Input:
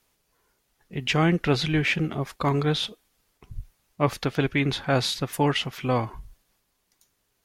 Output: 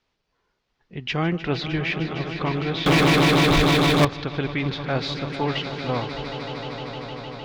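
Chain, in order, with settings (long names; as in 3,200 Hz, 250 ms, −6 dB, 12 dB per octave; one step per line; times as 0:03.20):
low-pass filter 5,000 Hz 24 dB per octave
on a send: echo that builds up and dies away 153 ms, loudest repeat 5, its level −12 dB
0:02.86–0:04.05: on the sum: leveller curve on the samples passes 5
level −2.5 dB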